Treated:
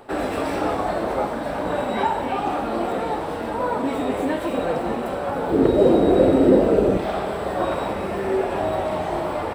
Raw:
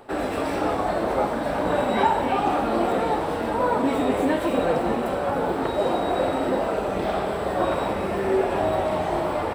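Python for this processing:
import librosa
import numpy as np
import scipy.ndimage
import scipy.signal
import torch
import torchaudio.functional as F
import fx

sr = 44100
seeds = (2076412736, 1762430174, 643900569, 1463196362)

y = fx.rider(x, sr, range_db=10, speed_s=2.0)
y = fx.low_shelf_res(y, sr, hz=590.0, db=10.0, q=1.5, at=(5.52, 6.97))
y = F.gain(torch.from_numpy(y), -1.0).numpy()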